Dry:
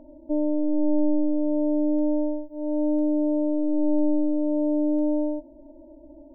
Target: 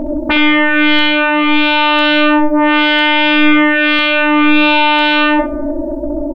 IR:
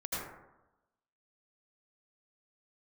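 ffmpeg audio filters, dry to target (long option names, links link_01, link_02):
-filter_complex "[0:a]aeval=exprs='0.237*sin(PI/2*8.91*val(0)/0.237)':channel_layout=same,aecho=1:1:17|66:0.355|0.355,asplit=2[link_01][link_02];[1:a]atrim=start_sample=2205[link_03];[link_02][link_03]afir=irnorm=-1:irlink=0,volume=-22dB[link_04];[link_01][link_04]amix=inputs=2:normalize=0,volume=4.5dB"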